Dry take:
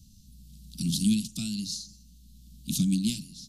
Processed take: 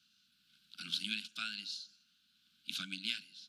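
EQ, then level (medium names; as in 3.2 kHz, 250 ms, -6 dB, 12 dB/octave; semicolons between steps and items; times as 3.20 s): resonant high-pass 1.5 kHz, resonance Q 11; distance through air 480 m; peaking EQ 5.9 kHz +2.5 dB; +9.5 dB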